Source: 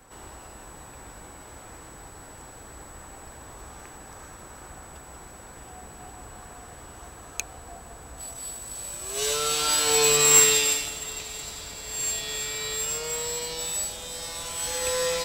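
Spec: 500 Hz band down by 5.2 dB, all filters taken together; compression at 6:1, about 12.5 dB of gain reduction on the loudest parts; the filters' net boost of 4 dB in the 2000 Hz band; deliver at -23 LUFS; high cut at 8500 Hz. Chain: LPF 8500 Hz; bell 500 Hz -6 dB; bell 2000 Hz +5.5 dB; compressor 6:1, threshold -27 dBFS; gain +7.5 dB

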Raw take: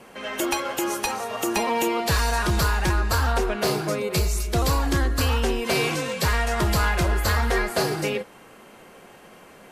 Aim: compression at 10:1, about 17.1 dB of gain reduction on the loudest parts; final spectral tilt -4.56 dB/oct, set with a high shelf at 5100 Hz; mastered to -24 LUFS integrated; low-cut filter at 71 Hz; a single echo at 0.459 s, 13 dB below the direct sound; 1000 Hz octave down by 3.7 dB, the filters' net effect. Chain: HPF 71 Hz; bell 1000 Hz -4.5 dB; high shelf 5100 Hz -8 dB; compressor 10:1, threshold -38 dBFS; echo 0.459 s -13 dB; gain +17.5 dB

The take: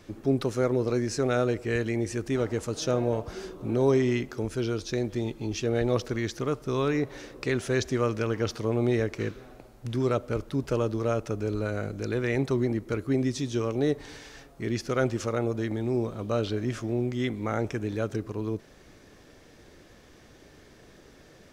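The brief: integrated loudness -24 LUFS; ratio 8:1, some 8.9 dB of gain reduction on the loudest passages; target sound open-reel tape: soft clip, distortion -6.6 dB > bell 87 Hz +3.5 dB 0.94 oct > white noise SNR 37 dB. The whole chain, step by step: compressor 8:1, threshold -28 dBFS; soft clip -36.5 dBFS; bell 87 Hz +3.5 dB 0.94 oct; white noise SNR 37 dB; gain +16.5 dB

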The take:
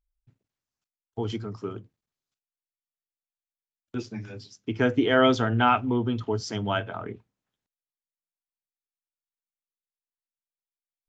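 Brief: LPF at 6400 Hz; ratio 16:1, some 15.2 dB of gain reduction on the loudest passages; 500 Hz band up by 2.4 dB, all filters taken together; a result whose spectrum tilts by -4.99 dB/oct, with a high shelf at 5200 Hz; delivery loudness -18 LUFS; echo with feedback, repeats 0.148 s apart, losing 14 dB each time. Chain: LPF 6400 Hz; bell 500 Hz +3 dB; high shelf 5200 Hz +6.5 dB; compressor 16:1, threshold -28 dBFS; feedback echo 0.148 s, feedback 20%, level -14 dB; gain +17 dB

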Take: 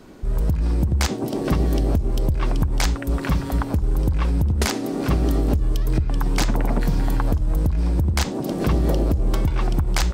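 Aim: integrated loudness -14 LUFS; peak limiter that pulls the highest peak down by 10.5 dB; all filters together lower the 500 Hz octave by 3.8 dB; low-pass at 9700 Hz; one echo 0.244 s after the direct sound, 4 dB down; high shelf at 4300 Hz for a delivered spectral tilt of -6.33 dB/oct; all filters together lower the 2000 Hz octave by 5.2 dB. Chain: LPF 9700 Hz; bell 500 Hz -5 dB; bell 2000 Hz -7 dB; high shelf 4300 Hz +3 dB; limiter -18 dBFS; echo 0.244 s -4 dB; gain +12 dB

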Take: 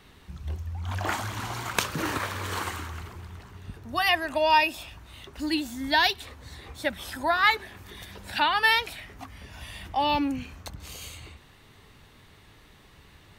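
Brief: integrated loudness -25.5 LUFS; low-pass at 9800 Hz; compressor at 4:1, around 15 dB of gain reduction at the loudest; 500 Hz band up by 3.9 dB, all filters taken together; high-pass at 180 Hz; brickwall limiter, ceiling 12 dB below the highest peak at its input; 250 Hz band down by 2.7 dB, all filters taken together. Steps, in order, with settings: HPF 180 Hz; LPF 9800 Hz; bell 250 Hz -5 dB; bell 500 Hz +6.5 dB; compressor 4:1, threshold -34 dBFS; gain +14.5 dB; limiter -13.5 dBFS

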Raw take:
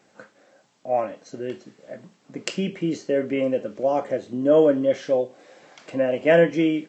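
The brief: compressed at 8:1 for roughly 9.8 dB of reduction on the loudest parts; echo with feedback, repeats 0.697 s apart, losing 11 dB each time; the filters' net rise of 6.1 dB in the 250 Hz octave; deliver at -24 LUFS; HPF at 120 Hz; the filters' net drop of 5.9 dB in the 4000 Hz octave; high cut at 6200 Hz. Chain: HPF 120 Hz; LPF 6200 Hz; bell 250 Hz +8 dB; bell 4000 Hz -9 dB; compressor 8:1, threshold -20 dBFS; feedback echo 0.697 s, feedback 28%, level -11 dB; gain +2.5 dB

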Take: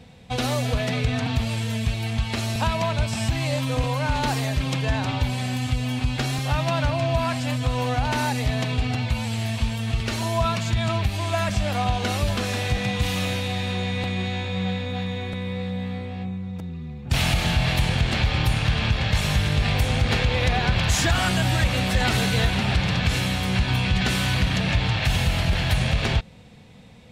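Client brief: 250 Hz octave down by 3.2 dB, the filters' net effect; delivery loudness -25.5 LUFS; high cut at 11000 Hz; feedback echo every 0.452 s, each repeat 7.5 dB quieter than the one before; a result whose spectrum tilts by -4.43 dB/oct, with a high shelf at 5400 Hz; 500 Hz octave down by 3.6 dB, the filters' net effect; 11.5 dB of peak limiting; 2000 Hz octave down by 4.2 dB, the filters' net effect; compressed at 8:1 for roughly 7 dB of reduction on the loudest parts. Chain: LPF 11000 Hz; bell 250 Hz -4 dB; bell 500 Hz -3.5 dB; bell 2000 Hz -6.5 dB; high shelf 5400 Hz +6.5 dB; compressor 8:1, threshold -24 dBFS; limiter -26 dBFS; feedback echo 0.452 s, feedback 42%, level -7.5 dB; gain +8 dB

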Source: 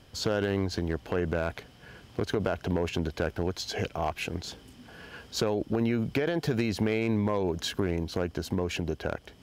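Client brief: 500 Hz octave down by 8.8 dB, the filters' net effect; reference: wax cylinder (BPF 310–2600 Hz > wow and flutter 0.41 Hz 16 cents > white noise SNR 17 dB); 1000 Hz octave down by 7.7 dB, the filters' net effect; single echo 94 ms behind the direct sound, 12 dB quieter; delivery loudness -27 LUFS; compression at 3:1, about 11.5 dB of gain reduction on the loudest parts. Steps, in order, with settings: bell 500 Hz -8.5 dB; bell 1000 Hz -7 dB; compressor 3:1, threshold -41 dBFS; BPF 310–2600 Hz; echo 94 ms -12 dB; wow and flutter 0.41 Hz 16 cents; white noise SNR 17 dB; gain +21 dB

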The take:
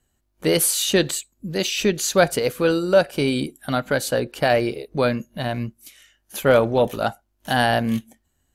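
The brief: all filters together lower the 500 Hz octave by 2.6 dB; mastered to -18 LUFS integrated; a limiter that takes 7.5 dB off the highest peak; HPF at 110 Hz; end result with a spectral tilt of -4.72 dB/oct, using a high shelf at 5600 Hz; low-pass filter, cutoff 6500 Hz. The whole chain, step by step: HPF 110 Hz; LPF 6500 Hz; bell 500 Hz -3 dB; high shelf 5600 Hz -8 dB; gain +7.5 dB; limiter -5 dBFS

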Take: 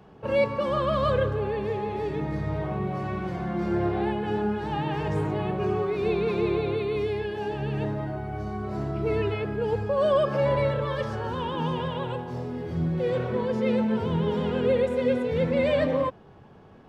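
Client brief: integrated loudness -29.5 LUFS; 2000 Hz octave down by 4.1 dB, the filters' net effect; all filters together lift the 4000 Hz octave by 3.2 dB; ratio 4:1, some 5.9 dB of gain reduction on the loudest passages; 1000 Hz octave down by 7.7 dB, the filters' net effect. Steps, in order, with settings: bell 1000 Hz -9 dB; bell 2000 Hz -4.5 dB; bell 4000 Hz +7 dB; compressor 4:1, threshold -28 dBFS; gain +3 dB

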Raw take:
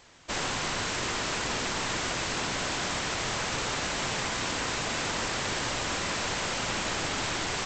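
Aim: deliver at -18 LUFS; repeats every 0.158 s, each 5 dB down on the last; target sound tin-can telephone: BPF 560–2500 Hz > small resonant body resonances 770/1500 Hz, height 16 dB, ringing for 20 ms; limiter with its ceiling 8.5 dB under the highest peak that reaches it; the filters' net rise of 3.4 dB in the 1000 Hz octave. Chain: bell 1000 Hz +5 dB; limiter -24.5 dBFS; BPF 560–2500 Hz; feedback echo 0.158 s, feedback 56%, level -5 dB; small resonant body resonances 770/1500 Hz, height 16 dB, ringing for 20 ms; gain +7.5 dB

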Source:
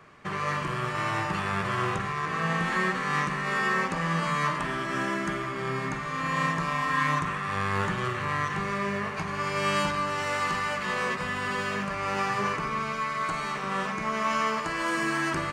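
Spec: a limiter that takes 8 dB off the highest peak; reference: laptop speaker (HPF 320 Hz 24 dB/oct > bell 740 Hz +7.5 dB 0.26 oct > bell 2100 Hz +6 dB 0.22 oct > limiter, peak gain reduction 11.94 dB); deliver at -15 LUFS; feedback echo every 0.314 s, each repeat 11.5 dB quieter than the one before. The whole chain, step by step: limiter -21 dBFS; HPF 320 Hz 24 dB/oct; bell 740 Hz +7.5 dB 0.26 oct; bell 2100 Hz +6 dB 0.22 oct; feedback echo 0.314 s, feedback 27%, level -11.5 dB; gain +22 dB; limiter -7.5 dBFS

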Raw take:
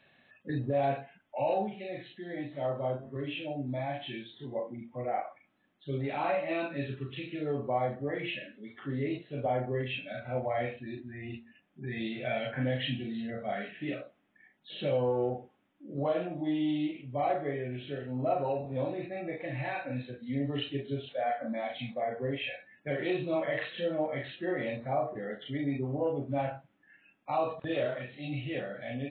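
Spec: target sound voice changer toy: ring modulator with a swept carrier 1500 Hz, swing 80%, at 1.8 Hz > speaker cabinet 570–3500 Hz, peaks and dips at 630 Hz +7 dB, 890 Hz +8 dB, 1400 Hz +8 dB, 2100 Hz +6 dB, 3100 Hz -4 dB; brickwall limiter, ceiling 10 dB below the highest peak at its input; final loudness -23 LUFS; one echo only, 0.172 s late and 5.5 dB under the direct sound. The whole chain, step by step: limiter -28 dBFS; echo 0.172 s -5.5 dB; ring modulator with a swept carrier 1500 Hz, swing 80%, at 1.8 Hz; speaker cabinet 570–3500 Hz, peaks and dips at 630 Hz +7 dB, 890 Hz +8 dB, 1400 Hz +8 dB, 2100 Hz +6 dB, 3100 Hz -4 dB; gain +11 dB

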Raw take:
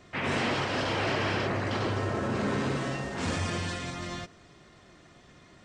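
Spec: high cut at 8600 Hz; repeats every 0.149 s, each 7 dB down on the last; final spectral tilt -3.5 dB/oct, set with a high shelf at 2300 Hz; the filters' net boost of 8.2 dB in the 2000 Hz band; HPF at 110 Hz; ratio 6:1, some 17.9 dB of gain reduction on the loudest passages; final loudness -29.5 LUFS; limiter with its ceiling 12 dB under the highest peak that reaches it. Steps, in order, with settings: HPF 110 Hz; LPF 8600 Hz; bell 2000 Hz +7 dB; high shelf 2300 Hz +6 dB; compressor 6:1, threshold -42 dBFS; limiter -41 dBFS; feedback echo 0.149 s, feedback 45%, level -7 dB; gain +18 dB

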